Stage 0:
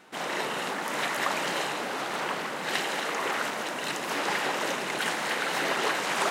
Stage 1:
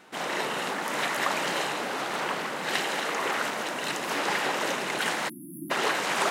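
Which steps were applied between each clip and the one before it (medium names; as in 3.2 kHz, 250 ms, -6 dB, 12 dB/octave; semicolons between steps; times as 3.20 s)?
spectral selection erased 5.29–5.71 s, 350–9700 Hz; trim +1 dB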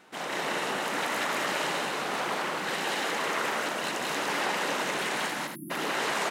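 peak limiter -19 dBFS, peak gain reduction 6.5 dB; on a send: loudspeakers at several distances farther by 63 m -1 dB, 90 m -7 dB; on the sum: trim -3 dB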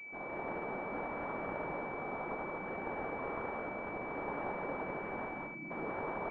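pre-echo 66 ms -17 dB; class-D stage that switches slowly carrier 2.3 kHz; trim -6.5 dB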